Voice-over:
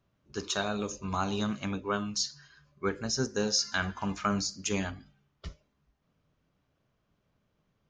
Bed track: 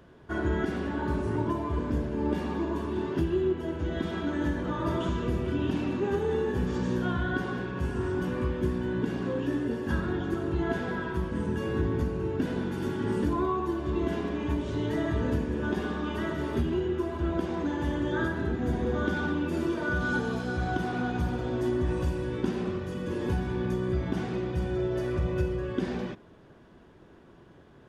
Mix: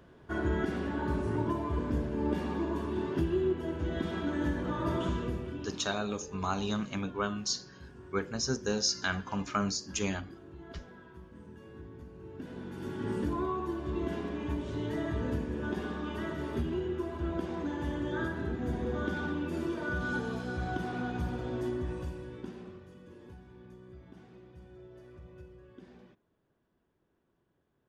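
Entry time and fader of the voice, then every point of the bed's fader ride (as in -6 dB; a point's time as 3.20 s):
5.30 s, -1.5 dB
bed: 5.14 s -2.5 dB
6.04 s -20 dB
12.02 s -20 dB
13.06 s -5 dB
21.59 s -5 dB
23.38 s -22.5 dB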